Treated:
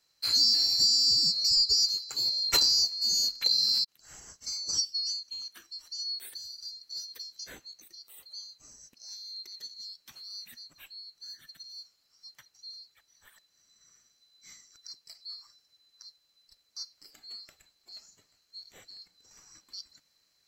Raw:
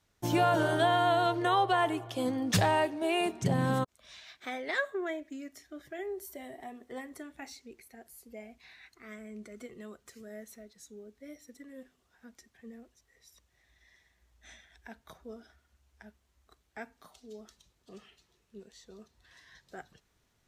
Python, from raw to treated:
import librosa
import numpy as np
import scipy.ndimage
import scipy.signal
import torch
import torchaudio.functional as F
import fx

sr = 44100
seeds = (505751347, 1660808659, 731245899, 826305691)

y = fx.band_swap(x, sr, width_hz=4000)
y = F.gain(torch.from_numpy(y), 2.0).numpy()